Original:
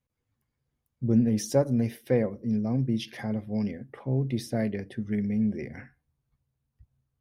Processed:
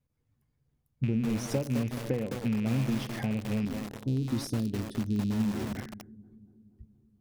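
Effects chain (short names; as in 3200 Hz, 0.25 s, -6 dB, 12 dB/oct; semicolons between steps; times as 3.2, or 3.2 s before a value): rattling part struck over -30 dBFS, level -27 dBFS; 3.65–5.76 EQ curve 110 Hz 0 dB, 150 Hz -7 dB, 280 Hz +3 dB, 670 Hz -15 dB, 2300 Hz -21 dB, 3900 Hz +6 dB; analogue delay 0.236 s, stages 2048, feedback 65%, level -22 dB; compressor 6:1, threshold -30 dBFS, peak gain reduction 12.5 dB; low shelf 410 Hz +8.5 dB; resonator 150 Hz, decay 0.25 s, harmonics all, mix 50%; lo-fi delay 0.212 s, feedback 55%, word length 6-bit, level -5.5 dB; gain +2.5 dB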